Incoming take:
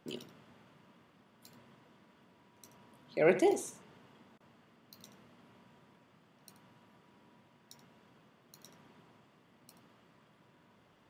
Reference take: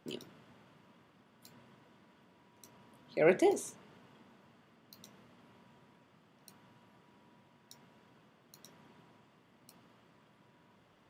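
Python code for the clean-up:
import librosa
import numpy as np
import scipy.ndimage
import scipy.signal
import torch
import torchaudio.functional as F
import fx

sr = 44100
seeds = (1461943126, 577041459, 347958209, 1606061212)

y = fx.fix_interpolate(x, sr, at_s=(4.38,), length_ms=22.0)
y = fx.fix_echo_inverse(y, sr, delay_ms=79, level_db=-13.5)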